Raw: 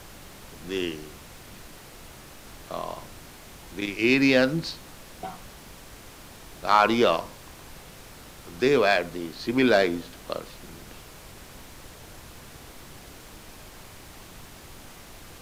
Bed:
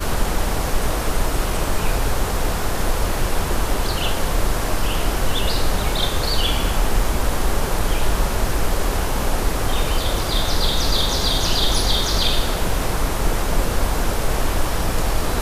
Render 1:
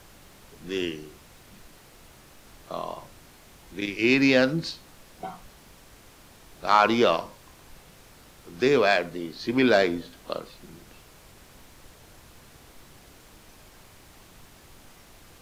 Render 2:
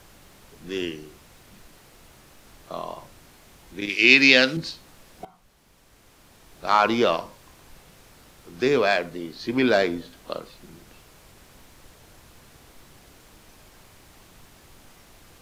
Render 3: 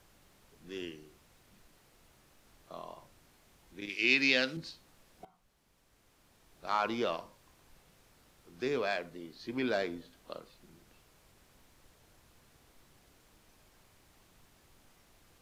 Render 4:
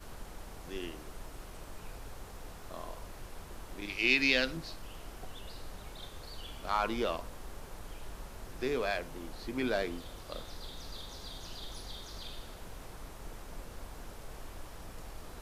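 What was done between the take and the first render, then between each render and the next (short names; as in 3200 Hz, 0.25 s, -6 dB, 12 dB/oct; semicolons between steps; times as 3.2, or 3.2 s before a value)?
noise print and reduce 6 dB
3.89–4.57 weighting filter D; 5.25–6.66 fade in, from -16 dB
gain -12.5 dB
add bed -26 dB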